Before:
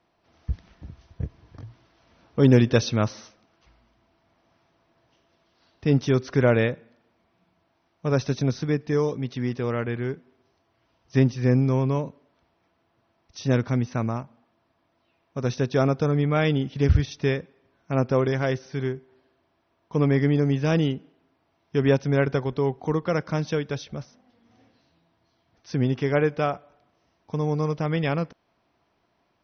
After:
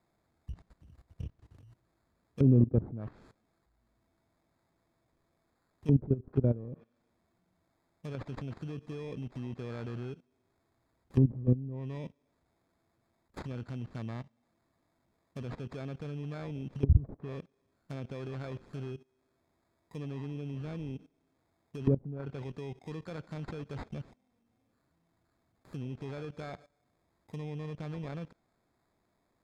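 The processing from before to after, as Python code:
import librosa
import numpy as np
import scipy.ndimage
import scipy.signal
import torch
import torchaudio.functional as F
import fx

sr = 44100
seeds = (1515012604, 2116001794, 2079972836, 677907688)

y = fx.high_shelf(x, sr, hz=3300.0, db=7.5)
y = fx.sample_hold(y, sr, seeds[0], rate_hz=2900.0, jitter_pct=0)
y = fx.level_steps(y, sr, step_db=18)
y = fx.env_lowpass_down(y, sr, base_hz=380.0, full_db=-24.5)
y = fx.low_shelf(y, sr, hz=350.0, db=6.5)
y = y * librosa.db_to_amplitude(-7.0)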